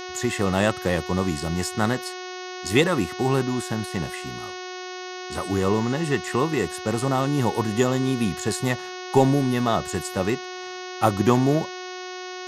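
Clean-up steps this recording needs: de-hum 366.4 Hz, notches 18

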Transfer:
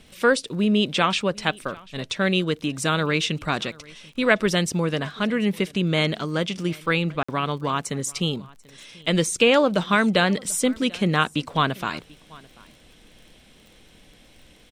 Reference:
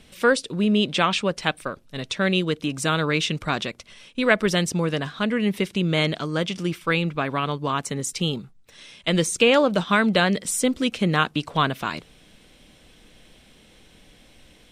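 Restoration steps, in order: de-click; interpolate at 7.23, 55 ms; inverse comb 0.739 s -24 dB

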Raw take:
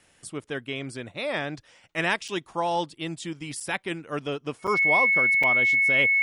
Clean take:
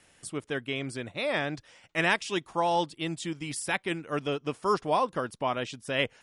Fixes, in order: notch 2200 Hz, Q 30; interpolate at 2.28/3.6/4.67/5.43, 5.6 ms

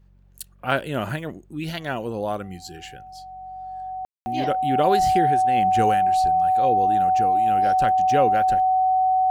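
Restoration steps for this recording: de-hum 46.6 Hz, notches 4; notch 750 Hz, Q 30; room tone fill 4.05–4.26

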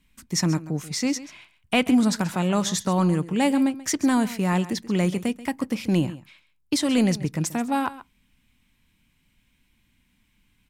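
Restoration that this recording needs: inverse comb 0.134 s -16 dB

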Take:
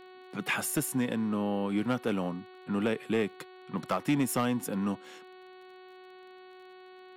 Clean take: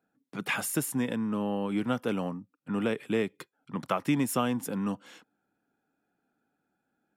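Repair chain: clip repair -20.5 dBFS; de-click; de-hum 370.1 Hz, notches 12

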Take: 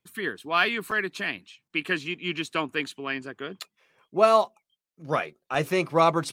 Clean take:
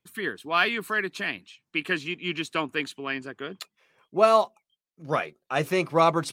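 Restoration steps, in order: interpolate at 0.91/5.54, 5.3 ms; interpolate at 1.68, 18 ms

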